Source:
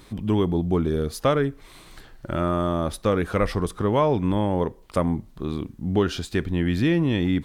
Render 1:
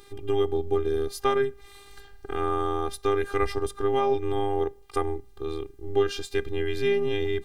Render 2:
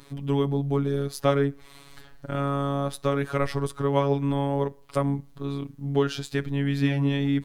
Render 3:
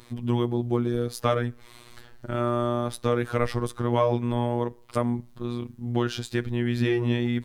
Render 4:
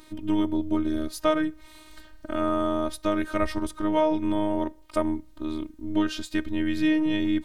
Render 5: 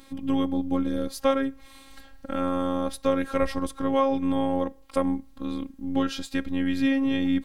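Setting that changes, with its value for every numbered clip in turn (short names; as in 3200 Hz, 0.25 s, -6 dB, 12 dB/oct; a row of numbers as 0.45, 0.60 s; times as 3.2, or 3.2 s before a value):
robotiser, frequency: 400, 140, 120, 310, 270 Hz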